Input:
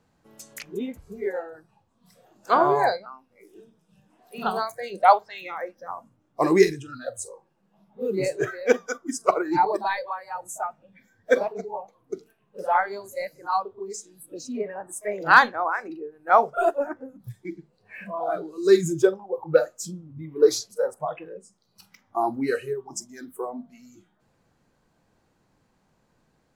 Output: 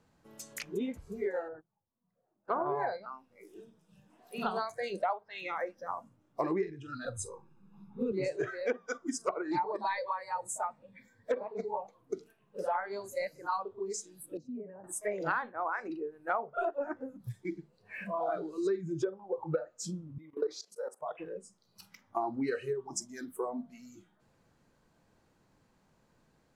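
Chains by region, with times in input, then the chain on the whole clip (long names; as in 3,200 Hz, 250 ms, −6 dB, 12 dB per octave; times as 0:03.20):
0:01.48–0:02.66: noise gate −50 dBFS, range −19 dB + low-pass filter 1,200 Hz
0:07.05–0:08.12: spectral tilt −2 dB per octave + comb filter 0.8 ms, depth 99%
0:09.51–0:11.79: EQ curve with evenly spaced ripples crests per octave 0.97, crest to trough 7 dB + highs frequency-modulated by the lows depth 0.11 ms
0:14.37–0:14.84: downward compressor 2.5 to 1, threshold −33 dBFS + resonant band-pass 130 Hz, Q 0.72
0:20.18–0:21.19: high-pass filter 350 Hz + output level in coarse steps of 17 dB
whole clip: treble cut that deepens with the level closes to 1,800 Hz, closed at −15.5 dBFS; notch filter 760 Hz, Q 24; downward compressor 8 to 1, threshold −27 dBFS; level −2 dB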